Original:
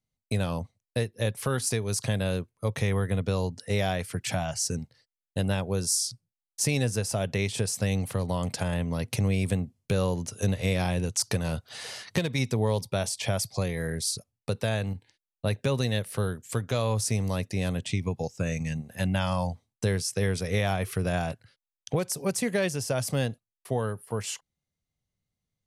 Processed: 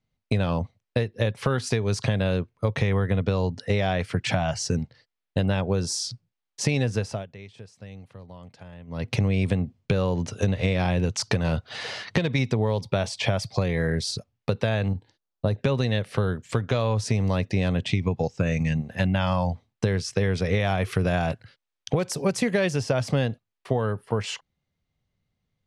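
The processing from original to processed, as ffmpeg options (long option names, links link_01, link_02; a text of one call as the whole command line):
ffmpeg -i in.wav -filter_complex "[0:a]asettb=1/sr,asplit=3[link_01][link_02][link_03];[link_01]atrim=end=14.884[link_04];[link_02]atrim=start=14.88:end=15.58,asetpts=PTS-STARTPTS,afade=type=in:duration=0.004:curve=qsin,afade=type=out:start_time=0.696:duration=0.004:curve=qsin,equalizer=frequency=2300:width=1.4:gain=-13.5[link_05];[link_03]atrim=start=15.576[link_06];[link_04][link_05]acrossfade=duration=0.004:curve1=hsin:curve2=qsin[link_07];[link_07][link_06]acrossfade=duration=0.004:curve1=qsin:curve2=hsin,asettb=1/sr,asplit=3[link_08][link_09][link_10];[link_08]atrim=end=20.604[link_11];[link_09]atrim=start=20.6:end=22.81,asetpts=PTS-STARTPTS,afade=type=in:duration=0.004:curve=qsin,afade=type=out:start_time=2.206:duration=0.004:curve=qsin,highshelf=frequency=8700:gain=11.5[link_12];[link_10]atrim=start=22.806[link_13];[link_11][link_12]acrossfade=duration=0.004:curve1=hsin:curve2=qsin[link_14];[link_14][link_13]acrossfade=duration=0.004:curve1=qsin:curve2=hsin,asplit=3[link_15][link_16][link_17];[link_15]atrim=end=7.26,asetpts=PTS-STARTPTS,afade=type=out:start_time=6.91:duration=0.35:silence=0.0707946[link_18];[link_16]atrim=start=7.26:end=8.87,asetpts=PTS-STARTPTS,volume=-23dB[link_19];[link_17]atrim=start=8.87,asetpts=PTS-STARTPTS,afade=type=in:duration=0.35:silence=0.0707946[link_20];[link_18][link_19][link_20]concat=n=3:v=0:a=1,lowpass=3800,acompressor=threshold=-27dB:ratio=6,volume=8dB" out.wav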